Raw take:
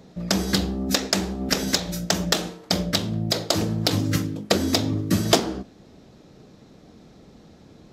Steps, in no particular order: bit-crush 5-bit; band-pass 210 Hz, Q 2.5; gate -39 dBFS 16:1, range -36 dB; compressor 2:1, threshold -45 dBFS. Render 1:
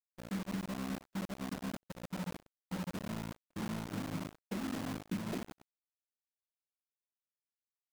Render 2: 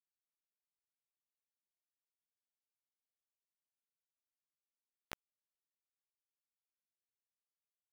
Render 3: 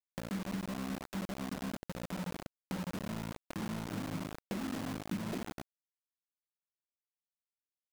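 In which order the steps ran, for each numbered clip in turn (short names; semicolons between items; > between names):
band-pass > bit-crush > compressor > gate; compressor > gate > band-pass > bit-crush; gate > band-pass > bit-crush > compressor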